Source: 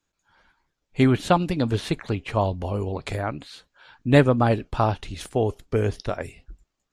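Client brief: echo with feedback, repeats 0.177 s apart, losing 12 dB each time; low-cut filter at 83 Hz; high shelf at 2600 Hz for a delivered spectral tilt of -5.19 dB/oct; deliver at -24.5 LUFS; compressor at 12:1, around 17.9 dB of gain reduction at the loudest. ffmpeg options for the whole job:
-af "highpass=83,highshelf=f=2.6k:g=5,acompressor=threshold=-28dB:ratio=12,aecho=1:1:177|354|531:0.251|0.0628|0.0157,volume=10dB"

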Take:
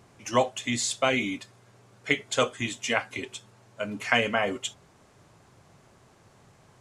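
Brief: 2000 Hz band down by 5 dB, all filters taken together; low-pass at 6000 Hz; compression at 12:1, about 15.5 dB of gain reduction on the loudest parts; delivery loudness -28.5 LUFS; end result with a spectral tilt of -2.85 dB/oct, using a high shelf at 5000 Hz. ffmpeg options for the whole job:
-af "lowpass=6k,equalizer=f=2k:t=o:g=-7,highshelf=f=5k:g=6,acompressor=threshold=-34dB:ratio=12,volume=11dB"

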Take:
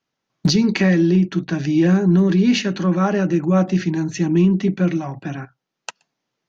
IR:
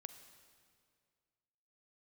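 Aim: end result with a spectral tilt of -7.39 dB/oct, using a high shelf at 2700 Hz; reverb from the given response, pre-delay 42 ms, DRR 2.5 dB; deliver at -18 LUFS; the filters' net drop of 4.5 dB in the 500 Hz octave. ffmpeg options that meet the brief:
-filter_complex "[0:a]equalizer=f=500:t=o:g=-7,highshelf=f=2.7k:g=-3.5,asplit=2[a][b];[1:a]atrim=start_sample=2205,adelay=42[c];[b][c]afir=irnorm=-1:irlink=0,volume=3dB[d];[a][d]amix=inputs=2:normalize=0,volume=-1dB"

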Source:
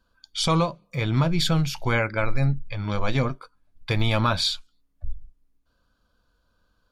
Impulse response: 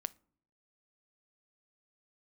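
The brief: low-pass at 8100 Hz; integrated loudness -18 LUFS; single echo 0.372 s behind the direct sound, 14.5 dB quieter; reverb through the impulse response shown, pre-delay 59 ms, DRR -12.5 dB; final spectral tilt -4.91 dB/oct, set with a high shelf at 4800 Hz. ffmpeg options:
-filter_complex "[0:a]lowpass=8.1k,highshelf=f=4.8k:g=6,aecho=1:1:372:0.188,asplit=2[a][b];[1:a]atrim=start_sample=2205,adelay=59[c];[b][c]afir=irnorm=-1:irlink=0,volume=14dB[d];[a][d]amix=inputs=2:normalize=0,volume=-6.5dB"

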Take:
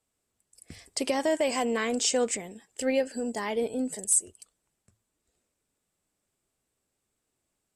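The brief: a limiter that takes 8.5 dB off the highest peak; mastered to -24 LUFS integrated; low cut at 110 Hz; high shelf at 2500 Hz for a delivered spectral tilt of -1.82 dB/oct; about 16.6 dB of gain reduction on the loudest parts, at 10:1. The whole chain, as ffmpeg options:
-af "highpass=110,highshelf=f=2.5k:g=6.5,acompressor=threshold=-30dB:ratio=10,volume=12dB,alimiter=limit=-12.5dB:level=0:latency=1"

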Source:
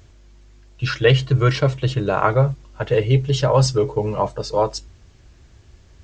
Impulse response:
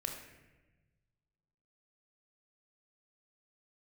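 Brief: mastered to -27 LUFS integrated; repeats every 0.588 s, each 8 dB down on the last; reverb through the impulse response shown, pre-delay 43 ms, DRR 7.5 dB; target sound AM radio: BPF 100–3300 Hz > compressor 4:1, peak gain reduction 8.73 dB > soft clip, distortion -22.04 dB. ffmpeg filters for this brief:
-filter_complex "[0:a]aecho=1:1:588|1176|1764|2352|2940:0.398|0.159|0.0637|0.0255|0.0102,asplit=2[a][b];[1:a]atrim=start_sample=2205,adelay=43[c];[b][c]afir=irnorm=-1:irlink=0,volume=-8dB[d];[a][d]amix=inputs=2:normalize=0,highpass=100,lowpass=3.3k,acompressor=threshold=-19dB:ratio=4,asoftclip=threshold=-12.5dB,volume=-2dB"

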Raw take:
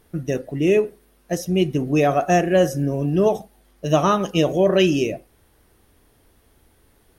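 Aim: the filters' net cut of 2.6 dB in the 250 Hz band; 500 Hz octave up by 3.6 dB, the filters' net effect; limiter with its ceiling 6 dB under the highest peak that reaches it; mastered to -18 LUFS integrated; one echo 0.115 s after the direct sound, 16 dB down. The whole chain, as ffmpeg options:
-af "equalizer=f=250:t=o:g=-8,equalizer=f=500:t=o:g=7,alimiter=limit=-9dB:level=0:latency=1,aecho=1:1:115:0.158,volume=2dB"

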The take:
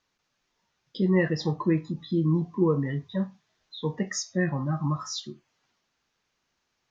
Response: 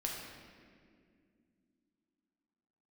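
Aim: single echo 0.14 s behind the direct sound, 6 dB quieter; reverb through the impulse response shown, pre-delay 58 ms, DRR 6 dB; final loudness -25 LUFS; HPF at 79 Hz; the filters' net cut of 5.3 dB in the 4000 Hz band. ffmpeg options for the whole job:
-filter_complex "[0:a]highpass=79,equalizer=f=4k:t=o:g=-7,aecho=1:1:140:0.501,asplit=2[a][b];[1:a]atrim=start_sample=2205,adelay=58[c];[b][c]afir=irnorm=-1:irlink=0,volume=-8dB[d];[a][d]amix=inputs=2:normalize=0"

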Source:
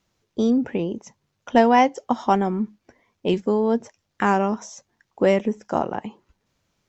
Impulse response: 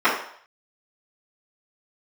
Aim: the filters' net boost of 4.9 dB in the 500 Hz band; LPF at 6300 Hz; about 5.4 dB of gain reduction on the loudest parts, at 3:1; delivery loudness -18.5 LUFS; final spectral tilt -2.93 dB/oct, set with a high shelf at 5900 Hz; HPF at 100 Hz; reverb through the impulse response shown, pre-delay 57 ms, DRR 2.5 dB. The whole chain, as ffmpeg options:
-filter_complex "[0:a]highpass=100,lowpass=6.3k,equalizer=f=500:t=o:g=6,highshelf=f=5.9k:g=7,acompressor=threshold=-15dB:ratio=3,asplit=2[a][b];[1:a]atrim=start_sample=2205,adelay=57[c];[b][c]afir=irnorm=-1:irlink=0,volume=-24.5dB[d];[a][d]amix=inputs=2:normalize=0,volume=3dB"

